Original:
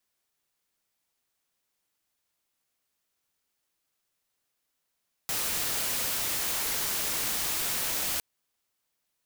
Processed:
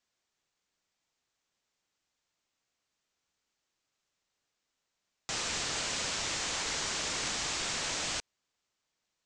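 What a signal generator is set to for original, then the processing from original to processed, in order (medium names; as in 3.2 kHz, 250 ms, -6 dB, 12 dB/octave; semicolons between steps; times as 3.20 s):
noise white, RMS -30 dBFS 2.91 s
steep low-pass 7.7 kHz 48 dB/octave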